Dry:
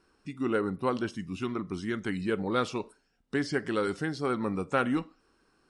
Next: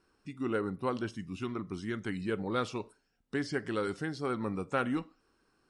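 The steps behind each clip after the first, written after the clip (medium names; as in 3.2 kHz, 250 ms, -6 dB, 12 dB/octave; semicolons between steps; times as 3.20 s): peaking EQ 110 Hz +5 dB 0.25 oct; trim -4 dB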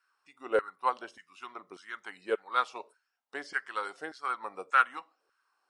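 LFO high-pass saw down 1.7 Hz 510–1500 Hz; upward expansion 1.5:1, over -43 dBFS; trim +4.5 dB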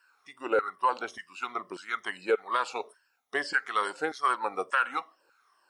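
drifting ripple filter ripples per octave 1.3, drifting -2.3 Hz, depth 11 dB; peak limiter -22.5 dBFS, peak gain reduction 11.5 dB; trim +7.5 dB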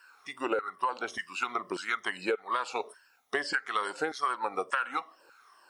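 compression 5:1, threshold -36 dBFS, peak gain reduction 14.5 dB; trim +8 dB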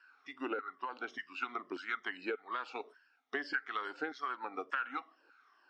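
cabinet simulation 170–4800 Hz, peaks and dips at 180 Hz -7 dB, 270 Hz +9 dB, 550 Hz -7 dB, 1 kHz -5 dB, 1.5 kHz +3 dB, 4.1 kHz -4 dB; trim -7 dB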